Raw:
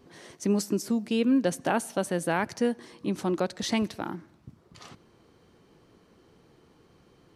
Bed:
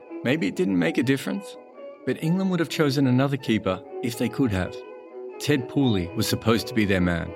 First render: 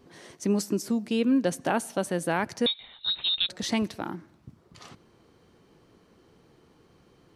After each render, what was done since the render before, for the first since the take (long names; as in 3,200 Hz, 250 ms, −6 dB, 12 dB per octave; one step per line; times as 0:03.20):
0:02.66–0:03.49: voice inversion scrambler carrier 4,000 Hz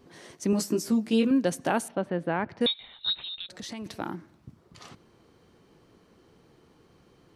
0:00.51–0:01.31: double-tracking delay 18 ms −4 dB
0:01.88–0:02.61: high-frequency loss of the air 410 metres
0:03.13–0:03.86: downward compressor 3 to 1, threshold −38 dBFS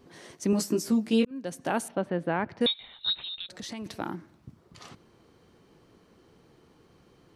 0:01.25–0:01.87: fade in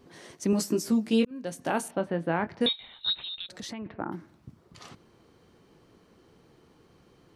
0:01.30–0:03.01: double-tracking delay 24 ms −10.5 dB
0:03.71–0:04.11: low-pass filter 3,200 Hz → 1,500 Hz 24 dB per octave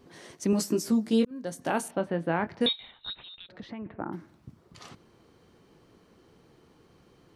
0:00.91–0:01.62: parametric band 2,600 Hz −9.5 dB 0.33 octaves
0:02.91–0:04.13: high-frequency loss of the air 370 metres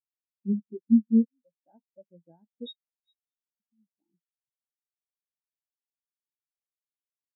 in parallel at −2.5 dB: downward compressor, threshold −34 dBFS, peak gain reduction 14 dB
on the sum: every bin expanded away from the loudest bin 4 to 1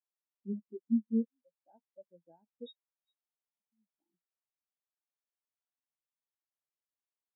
resonant band-pass 850 Hz, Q 0.84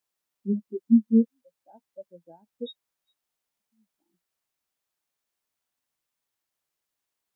level +11 dB